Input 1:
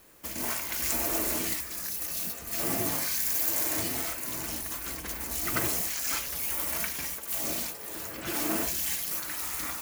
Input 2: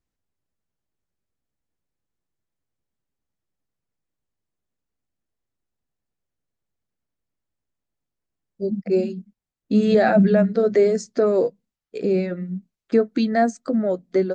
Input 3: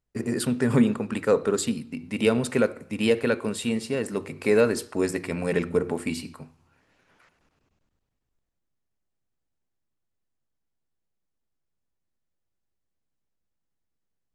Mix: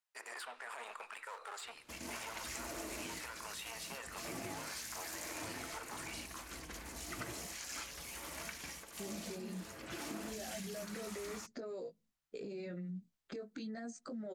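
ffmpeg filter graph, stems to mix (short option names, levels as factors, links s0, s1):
-filter_complex "[0:a]lowpass=7800,adelay=1650,volume=0.376[s0];[1:a]acompressor=threshold=0.0891:ratio=6,flanger=delay=17:depth=2.9:speed=0.88,adelay=400,volume=1.06[s1];[2:a]aeval=exprs='clip(val(0),-1,0.0422)':c=same,highpass=f=830:w=0.5412,highpass=f=830:w=1.3066,volume=0.841[s2];[s1][s2]amix=inputs=2:normalize=0,acrossover=split=2700|6200[s3][s4][s5];[s3]acompressor=threshold=0.0126:ratio=4[s6];[s4]acompressor=threshold=0.00141:ratio=4[s7];[s5]acompressor=threshold=0.00178:ratio=4[s8];[s6][s7][s8]amix=inputs=3:normalize=0,alimiter=level_in=3.98:limit=0.0631:level=0:latency=1:release=25,volume=0.251,volume=1[s9];[s0][s9]amix=inputs=2:normalize=0,acompressor=threshold=0.01:ratio=6"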